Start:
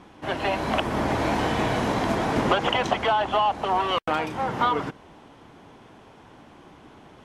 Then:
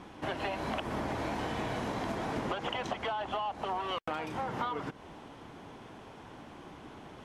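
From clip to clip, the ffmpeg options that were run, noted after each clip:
-af "acompressor=threshold=-33dB:ratio=5"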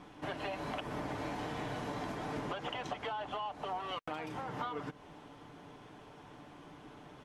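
-af "aecho=1:1:6.8:0.4,volume=-5dB"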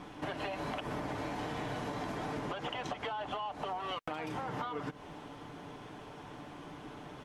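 -af "acompressor=threshold=-40dB:ratio=6,volume=5.5dB"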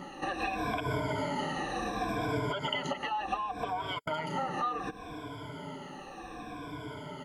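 -af "afftfilt=real='re*pow(10,23/40*sin(2*PI*(1.7*log(max(b,1)*sr/1024/100)/log(2)-(-0.68)*(pts-256)/sr)))':imag='im*pow(10,23/40*sin(2*PI*(1.7*log(max(b,1)*sr/1024/100)/log(2)-(-0.68)*(pts-256)/sr)))':win_size=1024:overlap=0.75"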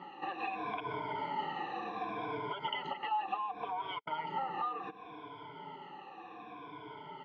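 -af "highpass=240,equalizer=f=260:t=q:w=4:g=-9,equalizer=f=600:t=q:w=4:g=-10,equalizer=f=880:t=q:w=4:g=6,equalizer=f=1.6k:t=q:w=4:g=-7,lowpass=f=3.3k:w=0.5412,lowpass=f=3.3k:w=1.3066,volume=-3.5dB"

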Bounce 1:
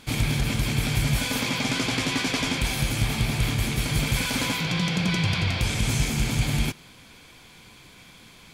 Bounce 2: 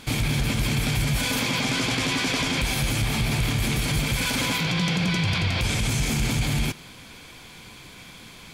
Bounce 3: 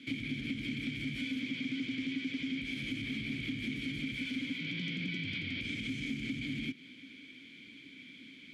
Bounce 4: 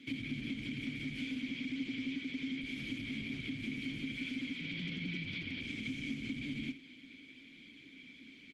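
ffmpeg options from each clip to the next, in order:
-af "alimiter=limit=-20.5dB:level=0:latency=1:release=37,volume=5dB"
-filter_complex "[0:a]asplit=3[a][b][c];[a]bandpass=f=270:t=q:w=8,volume=0dB[d];[b]bandpass=f=2.29k:t=q:w=8,volume=-6dB[e];[c]bandpass=f=3.01k:t=q:w=8,volume=-9dB[f];[d][e][f]amix=inputs=3:normalize=0,acrossover=split=150[g][h];[h]acompressor=threshold=-39dB:ratio=6[i];[g][i]amix=inputs=2:normalize=0,volume=3.5dB"
-af "aecho=1:1:74:0.224,volume=-2dB" -ar 48000 -c:a libopus -b:a 16k

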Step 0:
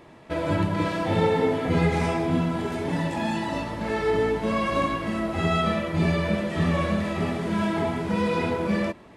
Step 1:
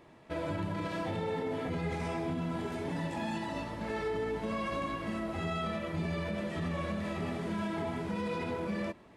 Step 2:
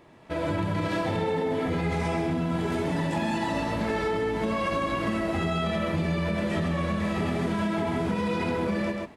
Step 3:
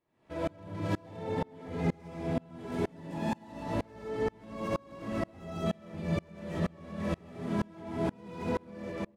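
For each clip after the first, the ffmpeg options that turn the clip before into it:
-af "alimiter=limit=-18.5dB:level=0:latency=1:release=50,volume=-8dB"
-af "dynaudnorm=f=190:g=5:m=10dB,aecho=1:1:135:0.422,acompressor=threshold=-27dB:ratio=6,volume=3dB"
-filter_complex "[0:a]acrossover=split=990[a][b];[a]aecho=1:1:191:0.668[c];[b]asoftclip=type=tanh:threshold=-38.5dB[d];[c][d]amix=inputs=2:normalize=0,aeval=exprs='val(0)*pow(10,-31*if(lt(mod(-2.1*n/s,1),2*abs(-2.1)/1000),1-mod(-2.1*n/s,1)/(2*abs(-2.1)/1000),(mod(-2.1*n/s,1)-2*abs(-2.1)/1000)/(1-2*abs(-2.1)/1000))/20)':c=same"

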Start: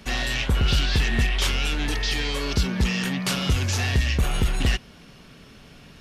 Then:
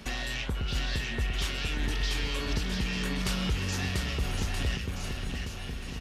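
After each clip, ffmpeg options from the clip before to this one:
-filter_complex "[0:a]acompressor=threshold=-33dB:ratio=3,asplit=2[a][b];[b]aecho=0:1:690|1276|1775|2199|2559:0.631|0.398|0.251|0.158|0.1[c];[a][c]amix=inputs=2:normalize=0"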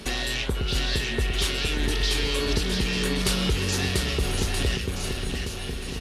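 -af "equalizer=f=400:t=o:w=0.67:g=8,equalizer=f=4k:t=o:w=0.67:g=5,equalizer=f=10k:t=o:w=0.67:g=9,volume=4dB"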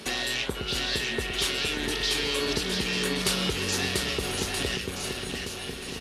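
-af "highpass=f=240:p=1"

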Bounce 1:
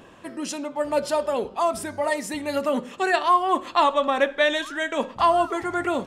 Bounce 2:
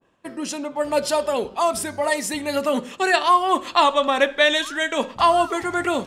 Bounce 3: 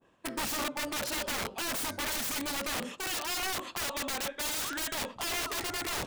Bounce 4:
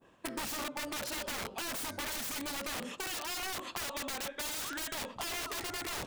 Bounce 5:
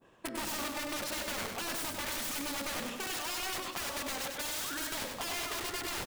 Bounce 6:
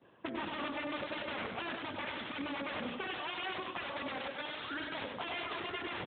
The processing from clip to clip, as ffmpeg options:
-af "agate=range=-33dB:threshold=-37dB:ratio=3:detection=peak,adynamicequalizer=threshold=0.0224:dfrequency=2200:dqfactor=0.7:tfrequency=2200:tqfactor=0.7:attack=5:release=100:ratio=0.375:range=3:mode=boostabove:tftype=highshelf,volume=2dB"
-af "areverse,acompressor=threshold=-24dB:ratio=12,areverse,aeval=exprs='(mod(21.1*val(0)+1,2)-1)/21.1':c=same,volume=-2dB"
-af "acompressor=threshold=-40dB:ratio=6,volume=3.5dB"
-af "aecho=1:1:98|196|294|392|490|588:0.562|0.264|0.124|0.0584|0.0274|0.0129"
-af "volume=1dB" -ar 8000 -c:a libopencore_amrnb -b:a 12200

